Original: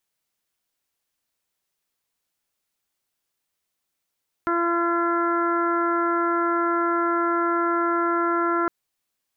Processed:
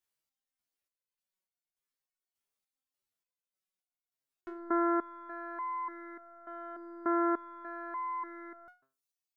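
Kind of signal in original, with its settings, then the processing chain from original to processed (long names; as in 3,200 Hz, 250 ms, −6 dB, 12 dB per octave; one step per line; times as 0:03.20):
steady harmonic partials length 4.21 s, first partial 341 Hz, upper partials −7/−4/0/−11/−19 dB, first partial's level −23.5 dB
reverb reduction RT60 1 s
transient designer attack +1 dB, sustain +5 dB
step-sequenced resonator 3.4 Hz 68–720 Hz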